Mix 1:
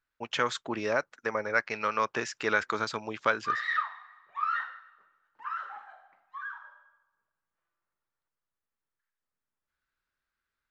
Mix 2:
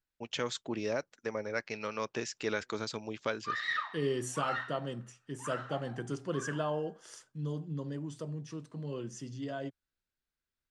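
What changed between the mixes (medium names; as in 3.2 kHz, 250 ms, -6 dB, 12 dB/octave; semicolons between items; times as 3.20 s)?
second voice: unmuted; background +6.0 dB; master: add peaking EQ 1.3 kHz -12.5 dB 1.8 oct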